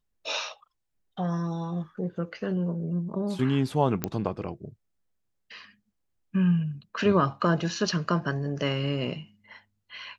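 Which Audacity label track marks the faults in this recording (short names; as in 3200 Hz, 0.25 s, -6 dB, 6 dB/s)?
4.040000	4.040000	pop -11 dBFS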